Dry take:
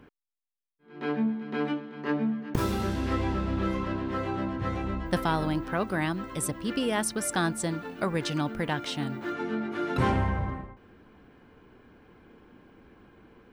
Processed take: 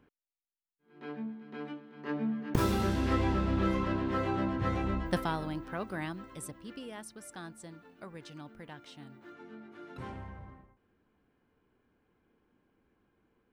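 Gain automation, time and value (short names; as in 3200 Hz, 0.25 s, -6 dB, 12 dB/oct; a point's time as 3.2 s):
1.81 s -12 dB
2.52 s -0.5 dB
4.98 s -0.5 dB
5.43 s -8.5 dB
6.03 s -8.5 dB
7.08 s -18 dB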